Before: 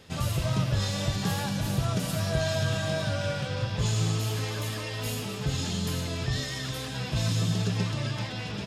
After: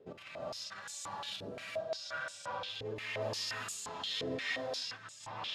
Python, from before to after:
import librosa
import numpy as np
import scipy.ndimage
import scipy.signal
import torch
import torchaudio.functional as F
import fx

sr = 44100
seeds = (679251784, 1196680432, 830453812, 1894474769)

y = fx.over_compress(x, sr, threshold_db=-32.0, ratio=-0.5)
y = fx.stretch_vocoder(y, sr, factor=0.64)
y = fx.rev_gated(y, sr, seeds[0], gate_ms=430, shape='rising', drr_db=-6.0)
y = fx.filter_held_bandpass(y, sr, hz=5.7, low_hz=420.0, high_hz=7700.0)